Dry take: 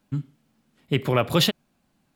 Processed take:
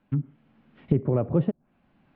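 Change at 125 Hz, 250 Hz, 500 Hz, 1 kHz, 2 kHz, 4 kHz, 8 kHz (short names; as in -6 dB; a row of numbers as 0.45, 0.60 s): +1.0 dB, +0.5 dB, -2.5 dB, -11.0 dB, under -20 dB, under -35 dB, under -40 dB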